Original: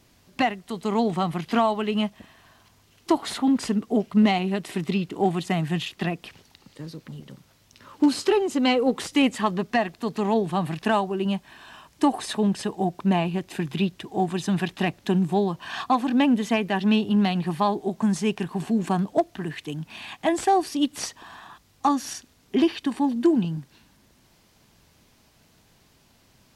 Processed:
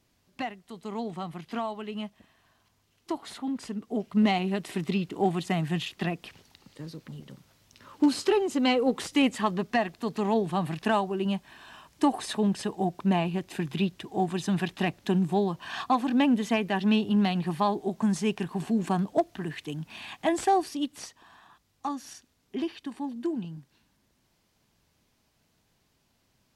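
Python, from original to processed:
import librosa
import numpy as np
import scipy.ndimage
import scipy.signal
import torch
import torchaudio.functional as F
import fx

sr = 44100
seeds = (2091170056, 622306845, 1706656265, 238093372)

y = fx.gain(x, sr, db=fx.line((3.72, -11.0), (4.32, -3.0), (20.54, -3.0), (21.07, -11.0)))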